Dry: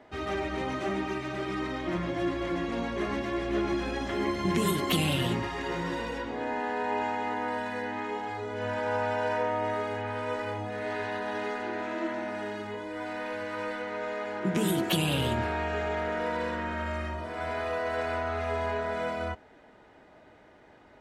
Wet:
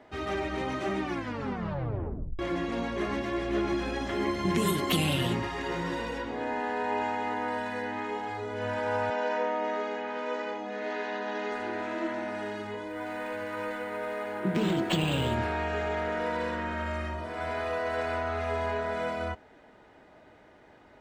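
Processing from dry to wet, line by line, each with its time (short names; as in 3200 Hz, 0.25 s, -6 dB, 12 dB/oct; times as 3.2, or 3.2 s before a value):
1.01 tape stop 1.38 s
9.1–11.52 Chebyshev band-pass 190–6900 Hz, order 4
12.88–15.33 decimation joined by straight lines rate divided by 4×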